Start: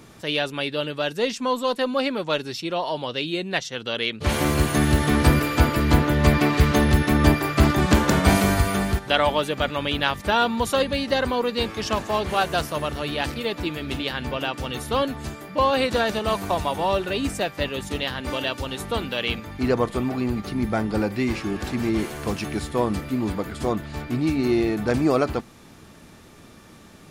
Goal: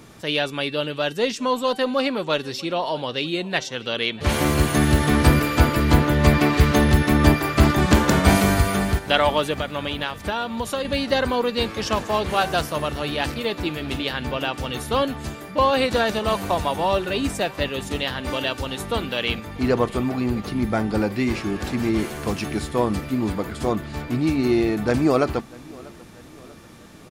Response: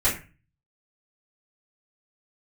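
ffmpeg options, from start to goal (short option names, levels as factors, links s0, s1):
-filter_complex "[0:a]bandreject=f=384.5:t=h:w=4,bandreject=f=769:t=h:w=4,bandreject=f=1153.5:t=h:w=4,bandreject=f=1538:t=h:w=4,bandreject=f=1922.5:t=h:w=4,bandreject=f=2307:t=h:w=4,bandreject=f=2691.5:t=h:w=4,bandreject=f=3076:t=h:w=4,bandreject=f=3460.5:t=h:w=4,bandreject=f=3845:t=h:w=4,bandreject=f=4229.5:t=h:w=4,bandreject=f=4614:t=h:w=4,bandreject=f=4998.5:t=h:w=4,bandreject=f=5383:t=h:w=4,bandreject=f=5767.5:t=h:w=4,bandreject=f=6152:t=h:w=4,bandreject=f=6536.5:t=h:w=4,bandreject=f=6921:t=h:w=4,bandreject=f=7305.5:t=h:w=4,bandreject=f=7690:t=h:w=4,bandreject=f=8074.5:t=h:w=4,bandreject=f=8459:t=h:w=4,bandreject=f=8843.5:t=h:w=4,bandreject=f=9228:t=h:w=4,bandreject=f=9612.5:t=h:w=4,bandreject=f=9997:t=h:w=4,bandreject=f=10381.5:t=h:w=4,asettb=1/sr,asplit=3[s0][s1][s2];[s0]atrim=end=9.544[s3];[s1]atrim=start=9.54:end=10.85,asetpts=PTS-STARTPTS,afade=t=in:d=0.004:c=qsin,afade=t=out:st=1.306:d=0.004:c=qsin,acompressor=threshold=0.0562:ratio=4[s4];[s2]atrim=start=10.846[s5];[s3][s4]acrossfade=d=0.004:c1=hsin:c2=qsin[s6];[s6][s5]acrossfade=d=0.004:c1=qsin:c2=hsin,aecho=1:1:641|1282|1923|2564:0.0708|0.0375|0.0199|0.0105,volume=1.19"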